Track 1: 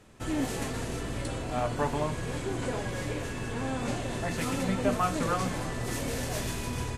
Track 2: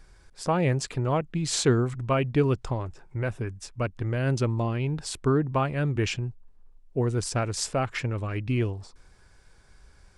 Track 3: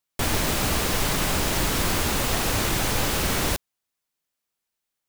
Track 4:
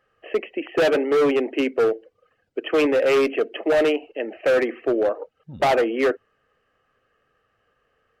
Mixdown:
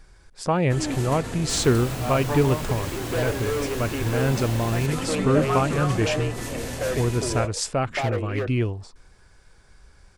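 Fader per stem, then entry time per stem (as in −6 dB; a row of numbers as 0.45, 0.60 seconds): +1.0, +2.5, −12.0, −9.5 decibels; 0.50, 0.00, 1.30, 2.35 seconds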